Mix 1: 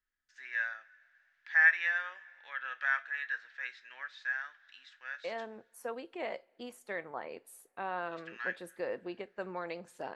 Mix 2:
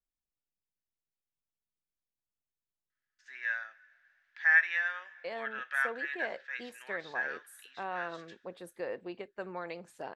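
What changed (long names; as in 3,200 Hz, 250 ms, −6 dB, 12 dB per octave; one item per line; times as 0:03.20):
first voice: entry +2.90 s
second voice: send off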